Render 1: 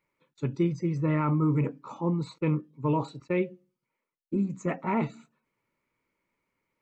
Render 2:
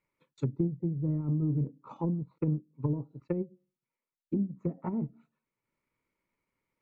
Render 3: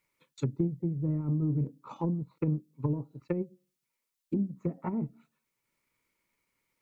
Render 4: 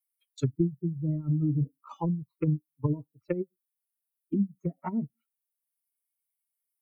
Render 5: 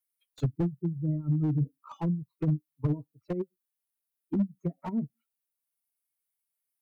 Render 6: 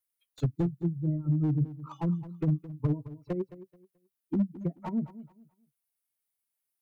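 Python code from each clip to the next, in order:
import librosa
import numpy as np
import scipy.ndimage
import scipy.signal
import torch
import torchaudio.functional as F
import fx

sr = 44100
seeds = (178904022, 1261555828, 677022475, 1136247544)

y1 = fx.low_shelf(x, sr, hz=130.0, db=5.0)
y1 = fx.env_lowpass_down(y1, sr, base_hz=320.0, full_db=-24.5)
y1 = fx.transient(y1, sr, attack_db=4, sustain_db=-5)
y1 = y1 * librosa.db_to_amplitude(-5.0)
y2 = fx.high_shelf(y1, sr, hz=2000.0, db=11.0)
y3 = fx.bin_expand(y2, sr, power=2.0)
y3 = y3 * librosa.db_to_amplitude(5.5)
y4 = fx.slew_limit(y3, sr, full_power_hz=17.0)
y5 = fx.echo_feedback(y4, sr, ms=216, feedback_pct=25, wet_db=-15.5)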